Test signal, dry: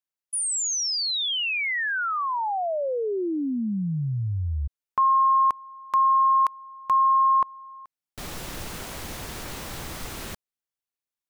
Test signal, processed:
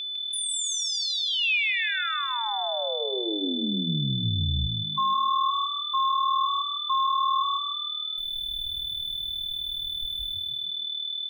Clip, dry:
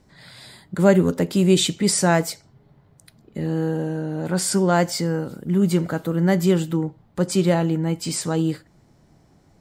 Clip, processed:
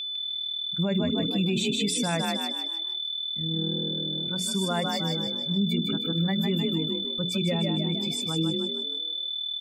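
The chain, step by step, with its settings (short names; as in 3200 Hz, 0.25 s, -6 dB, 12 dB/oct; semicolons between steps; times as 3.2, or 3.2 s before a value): per-bin expansion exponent 2; tone controls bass +5 dB, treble -1 dB; notches 60/120/180/240/300/360/420/480 Hz; whine 3500 Hz -28 dBFS; bell 2500 Hz +12.5 dB 0.34 oct; frequency-shifting echo 0.154 s, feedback 42%, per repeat +39 Hz, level -5.5 dB; limiter -13.5 dBFS; gain -4 dB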